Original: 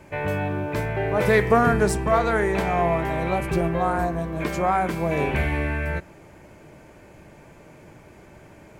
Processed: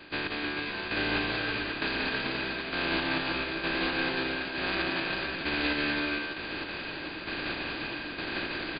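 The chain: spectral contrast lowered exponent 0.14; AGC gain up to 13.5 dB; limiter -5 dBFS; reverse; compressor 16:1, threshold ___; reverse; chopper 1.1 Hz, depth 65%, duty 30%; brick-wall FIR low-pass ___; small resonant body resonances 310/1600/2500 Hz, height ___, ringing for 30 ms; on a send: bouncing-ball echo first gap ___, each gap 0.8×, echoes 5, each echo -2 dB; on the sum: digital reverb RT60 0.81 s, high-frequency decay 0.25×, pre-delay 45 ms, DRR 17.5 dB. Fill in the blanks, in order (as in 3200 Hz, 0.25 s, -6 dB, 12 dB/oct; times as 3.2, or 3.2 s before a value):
-27 dBFS, 4900 Hz, 12 dB, 0.18 s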